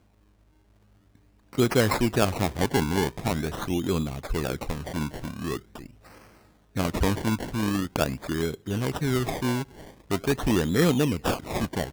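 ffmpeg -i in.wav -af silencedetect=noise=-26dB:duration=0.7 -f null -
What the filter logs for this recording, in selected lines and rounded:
silence_start: 0.00
silence_end: 1.58 | silence_duration: 1.58
silence_start: 5.57
silence_end: 6.76 | silence_duration: 1.20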